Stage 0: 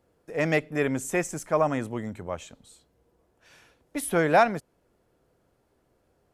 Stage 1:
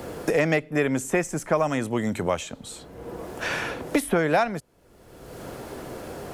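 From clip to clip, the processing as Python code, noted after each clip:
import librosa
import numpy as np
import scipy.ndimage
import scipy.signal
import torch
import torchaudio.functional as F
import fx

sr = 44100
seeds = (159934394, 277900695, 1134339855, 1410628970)

y = fx.band_squash(x, sr, depth_pct=100)
y = y * librosa.db_to_amplitude(2.5)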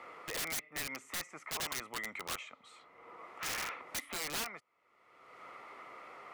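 y = fx.double_bandpass(x, sr, hz=1600.0, octaves=0.71)
y = (np.mod(10.0 ** (32.5 / 20.0) * y + 1.0, 2.0) - 1.0) / 10.0 ** (32.5 / 20.0)
y = y * librosa.db_to_amplitude(1.0)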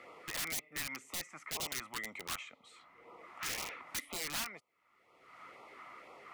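y = fx.filter_lfo_notch(x, sr, shape='sine', hz=2.0, low_hz=410.0, high_hz=1700.0, q=1.3)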